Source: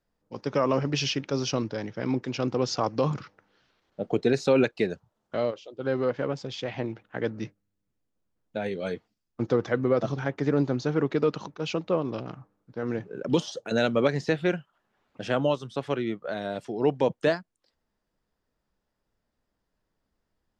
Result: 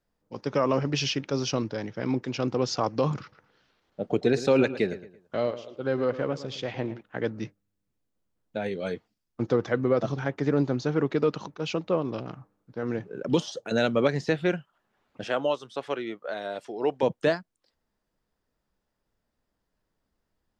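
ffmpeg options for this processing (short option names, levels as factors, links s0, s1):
-filter_complex "[0:a]asettb=1/sr,asplit=3[s0][s1][s2];[s0]atrim=end=3.214[s3];[s1]atrim=start=3.21:end=7.01,asetpts=PTS-STARTPTS,afade=t=in:d=0.004:c=qsin,afade=t=out:st=3.796:d=0.004:c=qsin,asplit=2[s4][s5];[s5]adelay=112,lowpass=f=3800:p=1,volume=0.211,asplit=2[s6][s7];[s7]adelay=112,lowpass=f=3800:p=1,volume=0.36,asplit=2[s8][s9];[s9]adelay=112,lowpass=f=3800:p=1,volume=0.36[s10];[s4][s6][s8][s10]amix=inputs=4:normalize=0,atrim=end_sample=167580[s11];[s2]atrim=start=7.006[s12];[s3][s11]acrossfade=d=0.004:c1=hsin:c2=qsin[s13];[s13][s12]acrossfade=d=0.004:c1=qsin:c2=hsin,asettb=1/sr,asplit=3[s14][s15][s16];[s14]atrim=end=15.244[s17];[s15]atrim=start=15.24:end=17.03,asetpts=PTS-STARTPTS,afade=t=in:d=0.004:c=qsin,afade=t=out:st=1.786:d=0.004:c=qsin,bass=f=250:g=-15,treble=f=4000:g=-1[s18];[s16]atrim=start=17.026[s19];[s17][s18]acrossfade=d=0.004:c1=hsin:c2=qsin[s20];[s20][s19]acrossfade=d=0.004:c1=qsin:c2=hsin"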